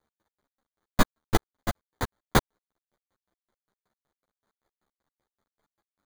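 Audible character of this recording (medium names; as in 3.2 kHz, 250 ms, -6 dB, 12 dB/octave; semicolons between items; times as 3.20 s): aliases and images of a low sample rate 2.7 kHz, jitter 0%; chopped level 5.2 Hz, depth 65%, duty 40%; a quantiser's noise floor 12-bit, dither none; a shimmering, thickened sound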